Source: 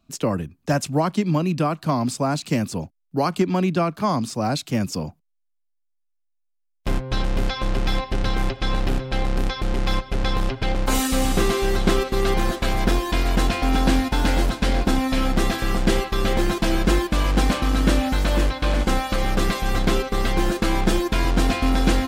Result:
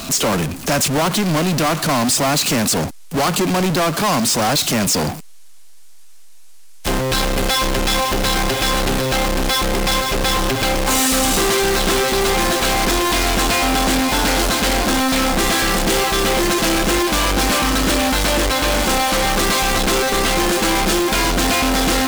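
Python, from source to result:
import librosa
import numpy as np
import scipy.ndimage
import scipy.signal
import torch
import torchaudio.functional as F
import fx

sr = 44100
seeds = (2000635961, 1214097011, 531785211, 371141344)

y = scipy.signal.sosfilt(scipy.signal.butter(2, 9500.0, 'lowpass', fs=sr, output='sos'), x)
y = fx.low_shelf(y, sr, hz=180.0, db=-11.5)
y = fx.power_curve(y, sr, exponent=0.35)
y = fx.high_shelf(y, sr, hz=5400.0, db=11.0)
y = 10.0 ** (-13.0 / 20.0) * np.tanh(y / 10.0 ** (-13.0 / 20.0))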